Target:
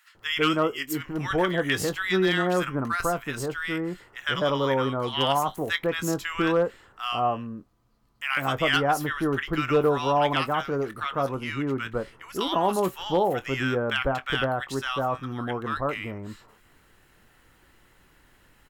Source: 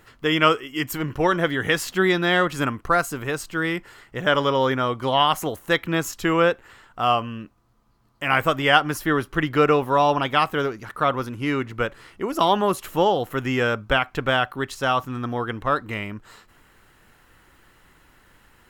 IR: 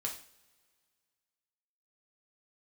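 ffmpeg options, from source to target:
-filter_complex "[0:a]asplit=2[s0][s1];[s1]adelay=22,volume=0.211[s2];[s0][s2]amix=inputs=2:normalize=0,acrossover=split=1200[s3][s4];[s3]adelay=150[s5];[s5][s4]amix=inputs=2:normalize=0,aeval=exprs='clip(val(0),-1,0.282)':c=same,volume=0.708"

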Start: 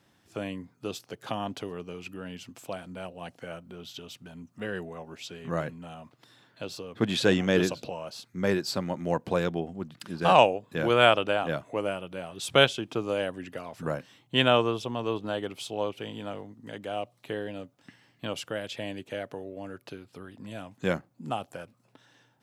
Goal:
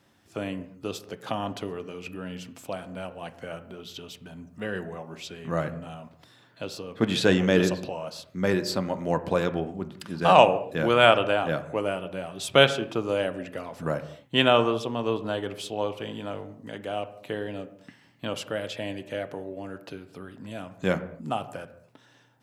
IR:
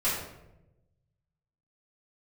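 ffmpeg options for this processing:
-filter_complex "[0:a]asplit=2[s0][s1];[1:a]atrim=start_sample=2205,afade=t=out:st=0.32:d=0.01,atrim=end_sample=14553,lowpass=2500[s2];[s1][s2]afir=irnorm=-1:irlink=0,volume=0.119[s3];[s0][s3]amix=inputs=2:normalize=0,volume=1.19"

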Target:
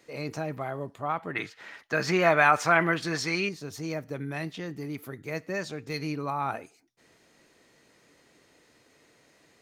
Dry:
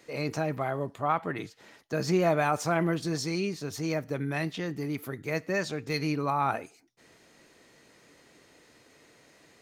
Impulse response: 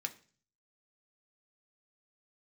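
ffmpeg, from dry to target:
-filter_complex "[0:a]asettb=1/sr,asplit=3[s0][s1][s2];[s0]atrim=end=1.354[s3];[s1]atrim=start=1.35:end=3.49,asetpts=PTS-STARTPTS,afade=t=in:d=0.004:c=qsin,afade=t=out:st=2.136:d=0.004:c=qsin,equalizer=f=1800:t=o:w=2.4:g=14.5[s4];[s2]atrim=start=3.486[s5];[s3][s4]acrossfade=d=0.004:c1=hsin:c2=qsin[s6];[s6][s5]acrossfade=d=0.004:c1=qsin:c2=hsin,volume=0.708"

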